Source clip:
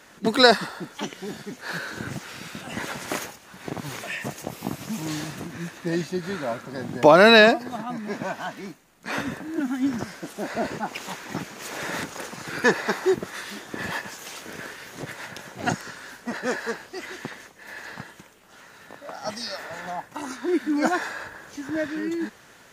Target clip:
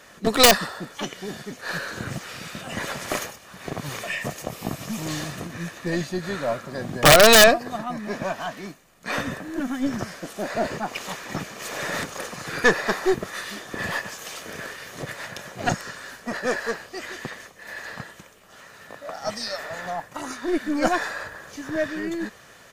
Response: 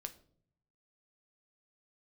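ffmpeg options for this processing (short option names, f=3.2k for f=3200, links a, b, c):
-af "aeval=exprs='0.841*(cos(1*acos(clip(val(0)/0.841,-1,1)))-cos(1*PI/2))+0.15*(cos(4*acos(clip(val(0)/0.841,-1,1)))-cos(4*PI/2))+0.0376*(cos(5*acos(clip(val(0)/0.841,-1,1)))-cos(5*PI/2))':c=same,aeval=exprs='(mod(1.5*val(0)+1,2)-1)/1.5':c=same,aecho=1:1:1.7:0.31"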